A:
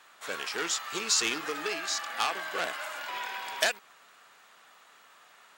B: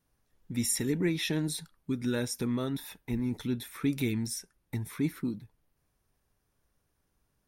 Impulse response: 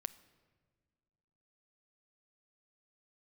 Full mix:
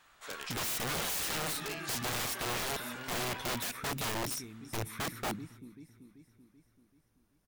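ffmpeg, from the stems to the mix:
-filter_complex "[0:a]volume=-8dB,asplit=2[link_01][link_02];[link_02]volume=-12.5dB[link_03];[1:a]volume=-0.5dB,asplit=2[link_04][link_05];[link_05]volume=-17.5dB[link_06];[2:a]atrim=start_sample=2205[link_07];[link_03][link_07]afir=irnorm=-1:irlink=0[link_08];[link_06]aecho=0:1:385|770|1155|1540|1925|2310|2695|3080:1|0.52|0.27|0.141|0.0731|0.038|0.0198|0.0103[link_09];[link_01][link_04][link_08][link_09]amix=inputs=4:normalize=0,aeval=exprs='(mod(29.9*val(0)+1,2)-1)/29.9':channel_layout=same"

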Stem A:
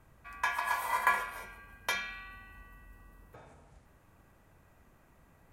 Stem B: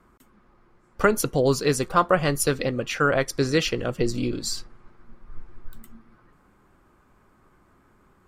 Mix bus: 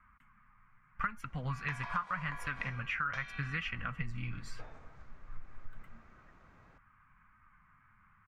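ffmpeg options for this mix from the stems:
ffmpeg -i stem1.wav -i stem2.wav -filter_complex "[0:a]lowpass=frequency=5900:width=0.5412,lowpass=frequency=5900:width=1.3066,acompressor=threshold=-37dB:ratio=6,adelay=1250,volume=0dB[link_01];[1:a]firequalizer=gain_entry='entry(160,0);entry(370,-28);entry(1100,4);entry(2200,7);entry(4000,-18);entry(14000,-23)':delay=0.05:min_phase=1,flanger=delay=3.1:depth=7:regen=-38:speed=0.81:shape=sinusoidal,volume=-2dB[link_02];[link_01][link_02]amix=inputs=2:normalize=0,acompressor=threshold=-33dB:ratio=5" out.wav

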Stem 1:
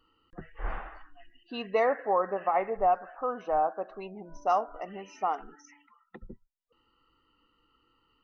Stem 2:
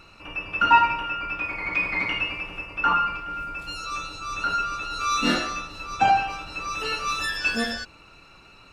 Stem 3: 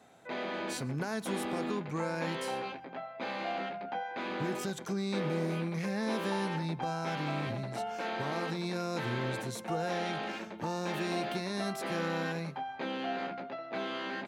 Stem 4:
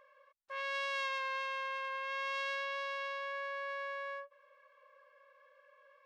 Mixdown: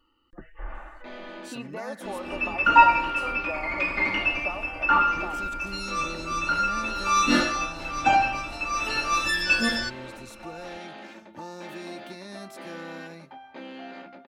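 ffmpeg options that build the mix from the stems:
ffmpeg -i stem1.wav -i stem2.wav -i stem3.wav -filter_complex "[0:a]acompressor=threshold=-33dB:ratio=6,volume=-0.5dB[link_01];[1:a]adelay=2050,volume=0dB[link_02];[2:a]adelay=750,volume=-5.5dB[link_03];[link_01][link_02][link_03]amix=inputs=3:normalize=0,aecho=1:1:3.4:0.48" out.wav

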